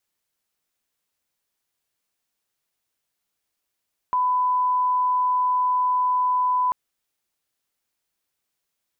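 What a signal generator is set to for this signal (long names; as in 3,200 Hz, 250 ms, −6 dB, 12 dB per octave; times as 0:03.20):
line-up tone −18 dBFS 2.59 s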